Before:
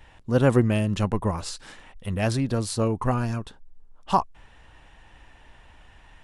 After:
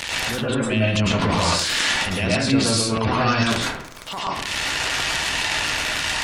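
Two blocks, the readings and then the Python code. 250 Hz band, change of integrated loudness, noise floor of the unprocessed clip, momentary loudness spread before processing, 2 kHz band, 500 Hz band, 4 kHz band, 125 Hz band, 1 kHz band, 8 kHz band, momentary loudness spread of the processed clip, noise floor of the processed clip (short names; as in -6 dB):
+3.5 dB, +4.5 dB, -53 dBFS, 17 LU, +16.0 dB, +2.0 dB, +19.0 dB, +1.0 dB, +5.0 dB, +14.0 dB, 6 LU, -33 dBFS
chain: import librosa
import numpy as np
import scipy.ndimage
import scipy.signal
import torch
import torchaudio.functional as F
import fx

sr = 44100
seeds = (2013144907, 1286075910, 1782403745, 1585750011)

y = x + 0.5 * 10.0 ** (-29.5 / 20.0) * np.sign(x)
y = fx.weighting(y, sr, curve='D')
y = fx.spec_gate(y, sr, threshold_db=-25, keep='strong')
y = fx.high_shelf(y, sr, hz=9000.0, db=5.5)
y = fx.over_compress(y, sr, threshold_db=-25.0, ratio=-0.5)
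y = fx.transient(y, sr, attack_db=-8, sustain_db=10)
y = fx.rev_plate(y, sr, seeds[0], rt60_s=0.54, hf_ratio=0.45, predelay_ms=95, drr_db=-5.5)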